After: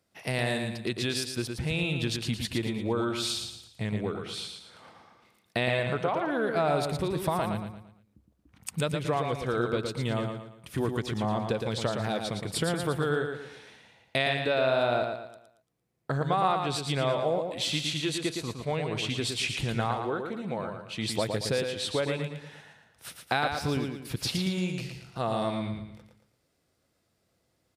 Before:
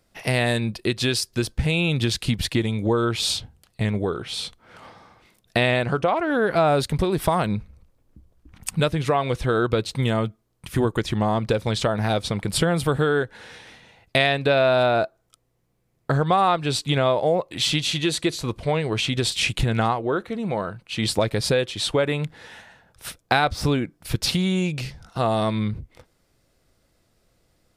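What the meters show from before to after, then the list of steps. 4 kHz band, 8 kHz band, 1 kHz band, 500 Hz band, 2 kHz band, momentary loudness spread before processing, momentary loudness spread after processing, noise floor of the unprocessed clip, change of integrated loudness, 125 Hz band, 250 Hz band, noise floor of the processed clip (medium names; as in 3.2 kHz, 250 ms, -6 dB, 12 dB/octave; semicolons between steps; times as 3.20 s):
-7.0 dB, -7.0 dB, -6.5 dB, -7.0 dB, -6.5 dB, 9 LU, 10 LU, -67 dBFS, -7.0 dB, -8.0 dB, -7.0 dB, -74 dBFS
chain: high-pass 89 Hz; feedback delay 114 ms, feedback 39%, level -5.5 dB; trim -8 dB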